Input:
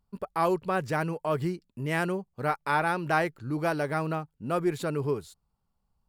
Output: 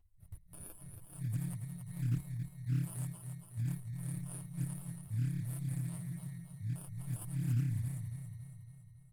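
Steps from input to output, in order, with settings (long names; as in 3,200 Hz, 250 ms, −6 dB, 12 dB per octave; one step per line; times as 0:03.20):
brick-wall band-stop 160–7,800 Hz
pitch vibrato 7.3 Hz 44 cents
comb filter 3.1 ms, depth 47%
flanger swept by the level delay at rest 4.9 ms, full sweep at −54.5 dBFS
in parallel at −8 dB: decimation without filtering 22×
on the sum: time stretch by overlap-add 1.5×, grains 58 ms
on a send: repeating echo 278 ms, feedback 55%, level −7 dB
on the sum: highs frequency-modulated by the lows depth 0.5 ms
level +5 dB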